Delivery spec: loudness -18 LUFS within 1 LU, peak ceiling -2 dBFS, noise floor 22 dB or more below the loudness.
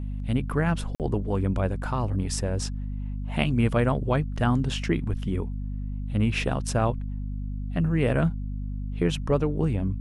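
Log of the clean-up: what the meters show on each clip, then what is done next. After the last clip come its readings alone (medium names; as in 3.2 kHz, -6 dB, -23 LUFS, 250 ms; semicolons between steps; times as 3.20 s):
dropouts 1; longest dropout 48 ms; hum 50 Hz; highest harmonic 250 Hz; hum level -29 dBFS; loudness -27.0 LUFS; peak level -9.0 dBFS; loudness target -18.0 LUFS
-> interpolate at 0.95 s, 48 ms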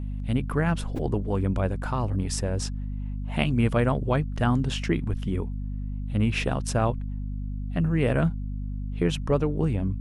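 dropouts 0; hum 50 Hz; highest harmonic 250 Hz; hum level -29 dBFS
-> hum notches 50/100/150/200/250 Hz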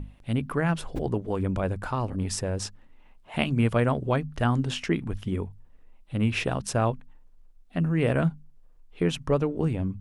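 hum not found; loudness -27.5 LUFS; peak level -8.5 dBFS; loudness target -18.0 LUFS
-> trim +9.5 dB; peak limiter -2 dBFS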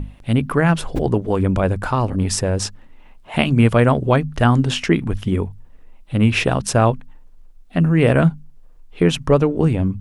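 loudness -18.5 LUFS; peak level -2.0 dBFS; noise floor -45 dBFS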